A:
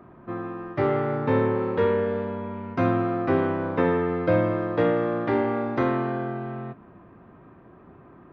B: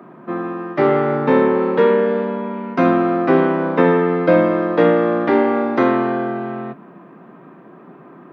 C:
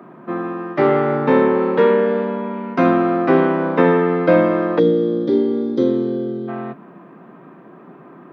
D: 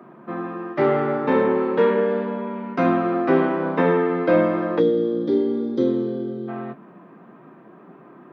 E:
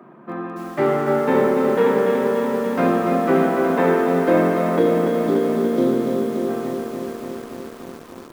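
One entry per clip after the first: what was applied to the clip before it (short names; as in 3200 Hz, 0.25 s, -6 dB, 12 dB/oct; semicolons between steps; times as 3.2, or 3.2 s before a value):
steep high-pass 150 Hz 48 dB/oct; gain +8.5 dB
spectral gain 4.79–6.48, 580–3100 Hz -21 dB
flange 1.2 Hz, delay 8 ms, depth 2.6 ms, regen -59%
lo-fi delay 0.288 s, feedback 80%, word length 7-bit, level -5 dB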